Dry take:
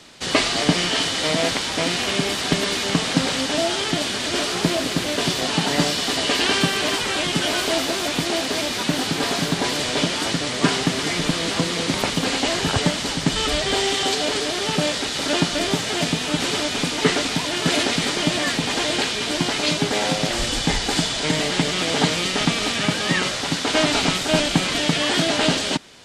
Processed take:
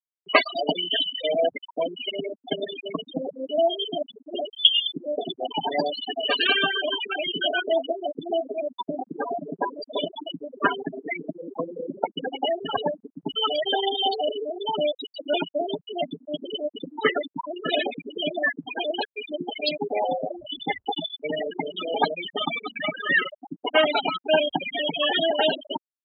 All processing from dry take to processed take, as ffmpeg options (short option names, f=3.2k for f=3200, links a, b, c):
-filter_complex "[0:a]asettb=1/sr,asplit=3[a][b][c];[a]atrim=end=4.494[d];[b]atrim=start=4.49:end=4.92,asetpts=PTS-STARTPTS,afade=t=in:d=0.004:c=qsin,afade=t=out:st=0.426:d=0.004:c=qsin,highpass=f=66:w=0.5412,highpass=f=66:w=1.3066,acrusher=bits=4:dc=4:mix=0:aa=0.000001,lowpass=f=3k:t=q:w=0.5098,lowpass=f=3k:t=q:w=0.6013,lowpass=f=3k:t=q:w=0.9,lowpass=f=3k:t=q:w=2.563,afreqshift=-3500[e];[c]atrim=start=4.916[f];[d][e]acrossfade=d=0.004:c1=hsin:c2=qsin[g];[g][f]acrossfade=d=0.004:c1=qsin:c2=hsin,asettb=1/sr,asplit=3[h][i][j];[h]atrim=end=14.664[k];[i]atrim=start=14.66:end=15.25,asetpts=PTS-STARTPTS,afade=t=in:d=0.004:c=qsin,afade=t=out:st=0.586:d=0.004:c=qsin,highshelf=f=7.3k:g=6,bandreject=f=800:w=18[l];[j]atrim=start=15.246[m];[k][l]acrossfade=d=0.004:c1=hsin:c2=qsin[n];[n][m]acrossfade=d=0.004:c1=qsin:c2=hsin,afftfilt=real='re*gte(hypot(re,im),0.251)':imag='im*gte(hypot(re,im),0.251)':win_size=1024:overlap=0.75,highpass=660,highshelf=f=4.5k:g=-8,volume=7dB"